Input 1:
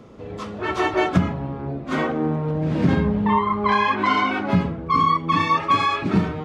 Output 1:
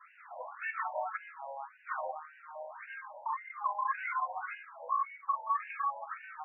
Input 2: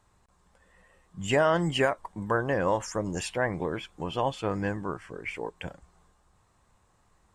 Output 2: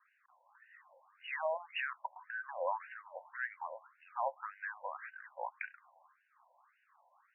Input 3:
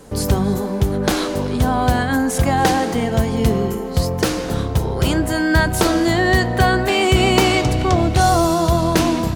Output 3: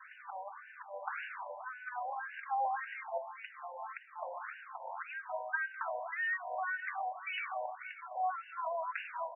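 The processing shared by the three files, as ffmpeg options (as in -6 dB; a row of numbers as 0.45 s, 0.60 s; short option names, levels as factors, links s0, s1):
-af "adynamicequalizer=threshold=0.0282:dfrequency=390:dqfactor=1.1:tfrequency=390:tqfactor=1.1:attack=5:release=100:ratio=0.375:range=3:mode=cutabove:tftype=bell,acompressor=threshold=0.0224:ratio=6,acrusher=bits=8:mode=log:mix=0:aa=0.000001,afftfilt=real='re*between(b*sr/1024,710*pow(2100/710,0.5+0.5*sin(2*PI*1.8*pts/sr))/1.41,710*pow(2100/710,0.5+0.5*sin(2*PI*1.8*pts/sr))*1.41)':imag='im*between(b*sr/1024,710*pow(2100/710,0.5+0.5*sin(2*PI*1.8*pts/sr))/1.41,710*pow(2100/710,0.5+0.5*sin(2*PI*1.8*pts/sr))*1.41)':win_size=1024:overlap=0.75,volume=1.68"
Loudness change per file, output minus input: -16.0 LU, -12.0 LU, -22.0 LU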